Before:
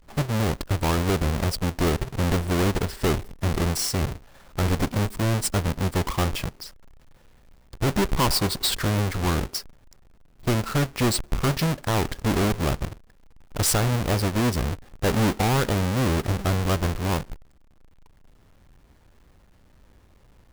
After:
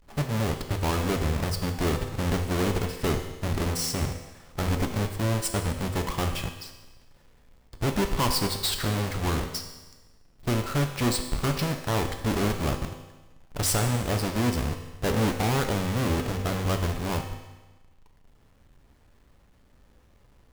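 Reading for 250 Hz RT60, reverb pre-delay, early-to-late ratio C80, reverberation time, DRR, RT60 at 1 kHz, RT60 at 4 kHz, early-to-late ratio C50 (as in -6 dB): 1.2 s, 4 ms, 9.5 dB, 1.2 s, 5.0 dB, 1.2 s, 1.2 s, 8.0 dB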